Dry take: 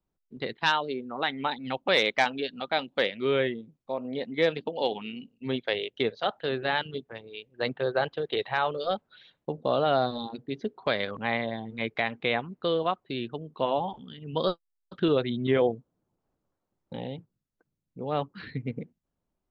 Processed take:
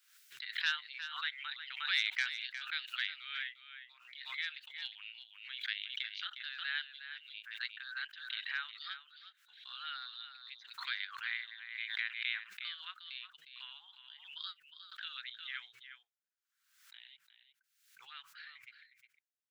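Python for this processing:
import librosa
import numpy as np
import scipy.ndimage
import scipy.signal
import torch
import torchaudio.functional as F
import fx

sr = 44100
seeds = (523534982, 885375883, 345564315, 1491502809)

p1 = scipy.signal.sosfilt(scipy.signal.ellip(4, 1.0, 60, 1500.0, 'highpass', fs=sr, output='sos'), x)
p2 = p1 + fx.echo_single(p1, sr, ms=359, db=-10.5, dry=0)
p3 = fx.pre_swell(p2, sr, db_per_s=73.0)
y = F.gain(torch.from_numpy(p3), -6.5).numpy()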